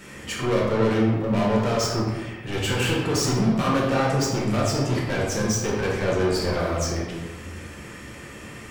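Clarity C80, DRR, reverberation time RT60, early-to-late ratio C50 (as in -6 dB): 3.5 dB, -5.0 dB, 1.3 s, 1.0 dB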